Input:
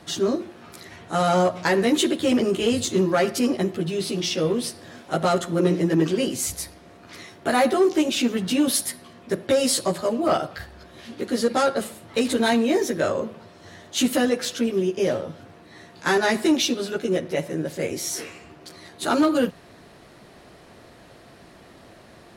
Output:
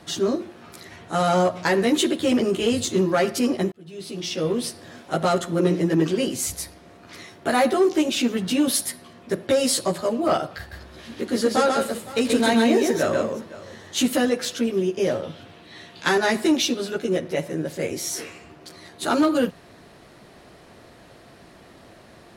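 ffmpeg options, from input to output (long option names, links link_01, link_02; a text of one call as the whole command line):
ffmpeg -i in.wav -filter_complex "[0:a]asettb=1/sr,asplit=3[link_01][link_02][link_03];[link_01]atrim=end=10.584[link_04];[link_02]atrim=start=10.58:end=14.05,asetpts=PTS-STARTPTS,afade=type=in:duration=0.004:curve=qsin,afade=type=out:start_time=3.466:duration=0.004:curve=qsin,aecho=1:1:134|511:0.708|0.133,atrim=end_sample=153027[link_05];[link_03]atrim=start=14.046[link_06];[link_04][link_05]acrossfade=duration=0.004:curve1=hsin:curve2=qsin[link_07];[link_07][link_06]acrossfade=duration=0.004:curve1=qsin:curve2=hsin,asettb=1/sr,asplit=3[link_08][link_09][link_10];[link_08]atrim=end=15.234[link_11];[link_09]atrim=start=15.23:end=16.09,asetpts=PTS-STARTPTS,afade=type=in:duration=0.004:curve=qsin,afade=type=out:start_time=0.856:duration=0.004:curve=qsin,equalizer=frequency=3200:width_type=o:width=0.98:gain=10.5[link_12];[link_10]atrim=start=16.086[link_13];[link_11][link_12]acrossfade=duration=0.004:curve1=hsin:curve2=qsin[link_14];[link_14][link_13]acrossfade=duration=0.004:curve1=qsin:curve2=hsin,asplit=2[link_15][link_16];[link_15]atrim=end=3.72,asetpts=PTS-STARTPTS,afade=type=out:start_time=3.716:duration=0.004:curve=hsin[link_17];[link_16]atrim=start=3.72,asetpts=PTS-STARTPTS,afade=type=in:duration=0.86[link_18];[link_17][link_18]concat=n=2:v=0:a=1" out.wav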